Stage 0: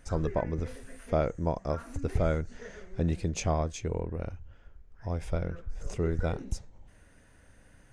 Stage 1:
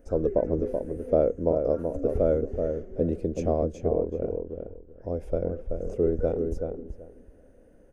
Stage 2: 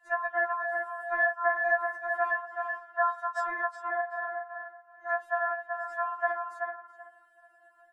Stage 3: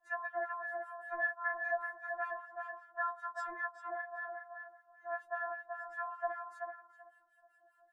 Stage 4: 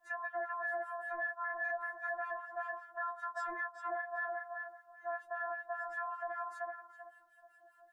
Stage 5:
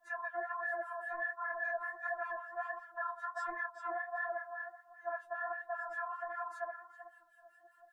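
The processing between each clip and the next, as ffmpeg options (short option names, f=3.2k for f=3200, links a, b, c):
-filter_complex "[0:a]equalizer=f=125:t=o:w=1:g=-9,equalizer=f=250:t=o:w=1:g=5,equalizer=f=500:t=o:w=1:g=12,equalizer=f=1k:t=o:w=1:g=-9,equalizer=f=2k:t=o:w=1:g=-9,equalizer=f=4k:t=o:w=1:g=-12,equalizer=f=8k:t=o:w=1:g=-11,asplit=2[a][b];[b]adelay=380,lowpass=f=1.5k:p=1,volume=-5dB,asplit=2[c][d];[d]adelay=380,lowpass=f=1.5k:p=1,volume=0.19,asplit=2[e][f];[f]adelay=380,lowpass=f=1.5k:p=1,volume=0.19[g];[c][e][g]amix=inputs=3:normalize=0[h];[a][h]amix=inputs=2:normalize=0"
-af "aeval=exprs='val(0)*sin(2*PI*1200*n/s)':c=same,afftfilt=real='re*4*eq(mod(b,16),0)':imag='im*4*eq(mod(b,16),0)':win_size=2048:overlap=0.75"
-filter_complex "[0:a]acrossover=split=1100[a][b];[a]aeval=exprs='val(0)*(1-1/2+1/2*cos(2*PI*5.1*n/s))':c=same[c];[b]aeval=exprs='val(0)*(1-1/2-1/2*cos(2*PI*5.1*n/s))':c=same[d];[c][d]amix=inputs=2:normalize=0,volume=-3.5dB"
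-af "alimiter=level_in=11dB:limit=-24dB:level=0:latency=1:release=176,volume=-11dB,volume=5dB"
-af "flanger=delay=3.9:depth=8.5:regen=31:speed=1.4:shape=triangular,volume=3.5dB"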